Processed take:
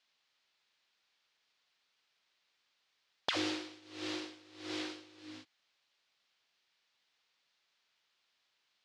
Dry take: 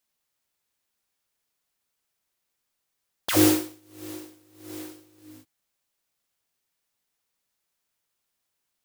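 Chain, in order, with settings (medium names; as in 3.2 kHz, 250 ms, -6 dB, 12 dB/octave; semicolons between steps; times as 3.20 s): low-pass 4.3 kHz 24 dB/octave; tilt EQ +3.5 dB/octave; compression 6:1, threshold -37 dBFS, peak gain reduction 17 dB; trim +3.5 dB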